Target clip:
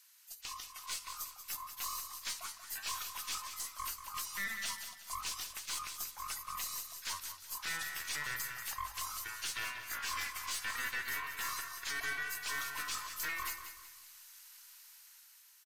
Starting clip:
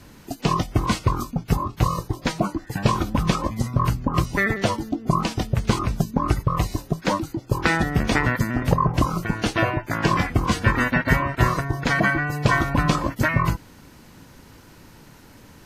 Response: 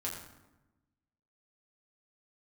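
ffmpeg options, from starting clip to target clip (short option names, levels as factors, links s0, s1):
-filter_complex "[0:a]highpass=f=980:w=0.5412,highpass=f=980:w=1.3066,aderivative,dynaudnorm=f=480:g=5:m=2.37,alimiter=limit=0.1:level=0:latency=1:release=13,aeval=exprs='(tanh(20*val(0)+0.4)-tanh(0.4))/20':c=same,aecho=1:1:186|372|558|744:0.335|0.124|0.0459|0.017,asplit=2[s0][s1];[1:a]atrim=start_sample=2205,lowshelf=f=160:g=10.5[s2];[s1][s2]afir=irnorm=-1:irlink=0,volume=0.178[s3];[s0][s3]amix=inputs=2:normalize=0,volume=0.473"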